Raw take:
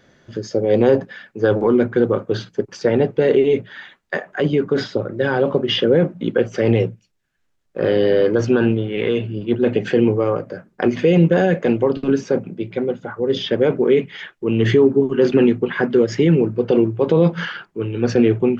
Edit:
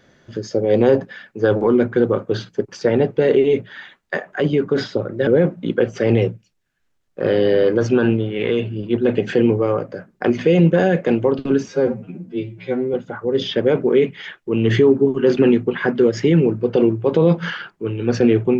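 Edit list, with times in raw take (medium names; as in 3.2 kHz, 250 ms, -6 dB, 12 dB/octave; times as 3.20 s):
5.27–5.85 s: delete
12.26–12.89 s: stretch 2×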